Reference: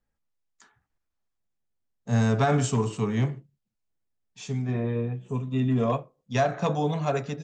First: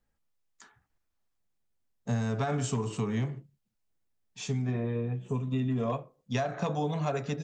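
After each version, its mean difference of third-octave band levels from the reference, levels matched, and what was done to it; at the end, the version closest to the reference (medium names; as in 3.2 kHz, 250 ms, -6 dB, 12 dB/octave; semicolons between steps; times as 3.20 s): 2.5 dB: compression, threshold -29 dBFS, peak gain reduction 11 dB; trim +2 dB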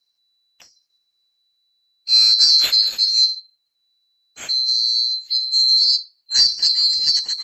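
20.0 dB: split-band scrambler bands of 4 kHz; trim +8.5 dB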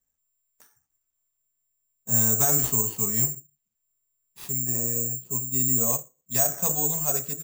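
12.0 dB: careless resampling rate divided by 6×, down none, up zero stuff; trim -7 dB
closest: first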